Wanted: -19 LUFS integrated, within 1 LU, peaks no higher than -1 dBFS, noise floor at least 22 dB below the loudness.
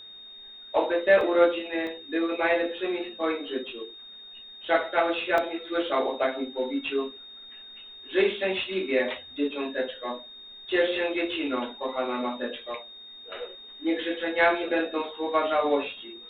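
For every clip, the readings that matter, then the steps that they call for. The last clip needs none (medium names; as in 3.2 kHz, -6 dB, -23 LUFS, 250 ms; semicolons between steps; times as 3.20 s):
dropouts 3; longest dropout 1.6 ms; steady tone 3.7 kHz; tone level -43 dBFS; loudness -27.0 LUFS; peak level -8.0 dBFS; loudness target -19.0 LUFS
-> interpolate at 1.21/1.87/5.38 s, 1.6 ms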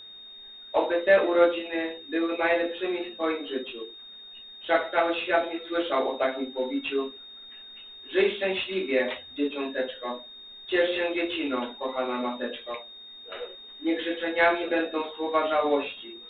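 dropouts 0; steady tone 3.7 kHz; tone level -43 dBFS
-> band-stop 3.7 kHz, Q 30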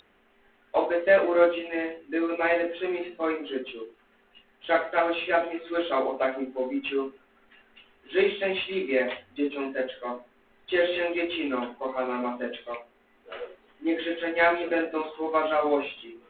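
steady tone not found; loudness -27.0 LUFS; peak level -8.0 dBFS; loudness target -19.0 LUFS
-> trim +8 dB; peak limiter -1 dBFS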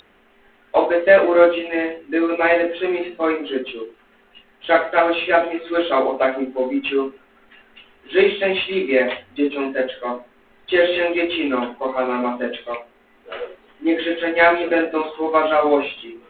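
loudness -19.5 LUFS; peak level -1.0 dBFS; noise floor -55 dBFS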